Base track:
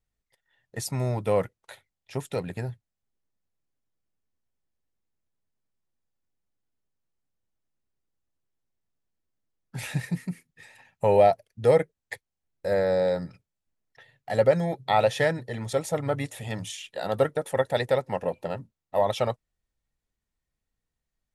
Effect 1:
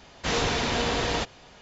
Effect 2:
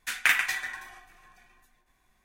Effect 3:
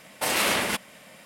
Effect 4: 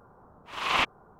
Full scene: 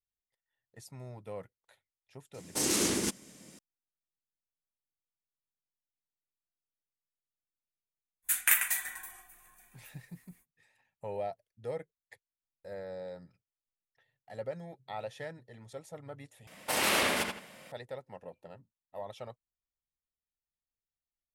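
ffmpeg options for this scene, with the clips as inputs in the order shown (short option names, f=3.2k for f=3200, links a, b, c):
-filter_complex "[3:a]asplit=2[a][b];[0:a]volume=-18.5dB[c];[a]firequalizer=gain_entry='entry(230,0);entry(330,6);entry(590,-13);entry(2600,-13);entry(6200,4);entry(14000,-9)':delay=0.05:min_phase=1[d];[2:a]aexciter=amount=6.8:drive=7.8:freq=7.4k[e];[b]asplit=2[f][g];[g]adelay=81,lowpass=f=4k:p=1,volume=-3.5dB,asplit=2[h][i];[i]adelay=81,lowpass=f=4k:p=1,volume=0.32,asplit=2[j][k];[k]adelay=81,lowpass=f=4k:p=1,volume=0.32,asplit=2[l][m];[m]adelay=81,lowpass=f=4k:p=1,volume=0.32[n];[f][h][j][l][n]amix=inputs=5:normalize=0[o];[c]asplit=2[p][q];[p]atrim=end=16.474[r];[o]atrim=end=1.25,asetpts=PTS-STARTPTS,volume=-5dB[s];[q]atrim=start=17.716[t];[d]atrim=end=1.25,asetpts=PTS-STARTPTS,volume=-0.5dB,afade=t=in:d=0.004:c=hsin,afade=t=out:st=1.246:d=0.004:c=hsin,adelay=2340[u];[e]atrim=end=2.24,asetpts=PTS-STARTPTS,volume=-7.5dB,afade=t=in:d=0.05,afade=t=out:st=2.19:d=0.05,adelay=8220[v];[r][s]acrossfade=d=0.004:c1=hsin:c2=hsin[w];[w][t]acrossfade=d=0.004:c1=hsin:c2=hsin[x];[x][u][v]amix=inputs=3:normalize=0"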